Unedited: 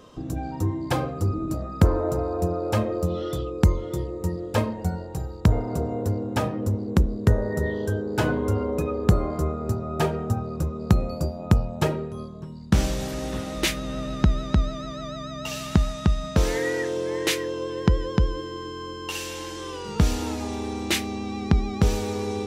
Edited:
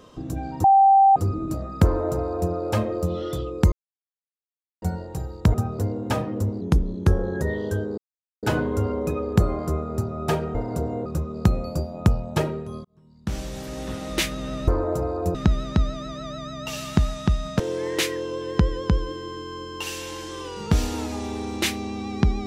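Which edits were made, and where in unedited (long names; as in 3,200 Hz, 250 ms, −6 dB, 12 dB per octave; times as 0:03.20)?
0:00.64–0:01.16: beep over 782 Hz −11 dBFS
0:01.84–0:02.51: duplicate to 0:14.13
0:03.72–0:04.82: silence
0:05.54–0:06.05: swap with 0:10.26–0:10.51
0:06.87–0:07.58: play speed 88%
0:08.14: splice in silence 0.45 s
0:12.30–0:13.57: fade in
0:16.38–0:16.88: remove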